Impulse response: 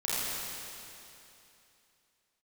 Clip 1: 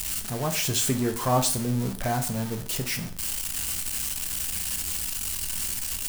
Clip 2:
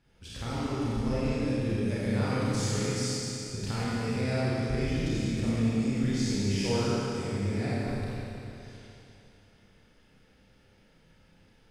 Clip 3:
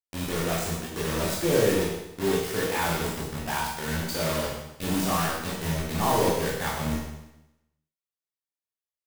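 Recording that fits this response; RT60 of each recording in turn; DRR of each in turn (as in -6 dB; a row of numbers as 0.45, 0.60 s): 2; 0.45, 2.9, 0.90 s; 6.5, -10.0, -5.5 dB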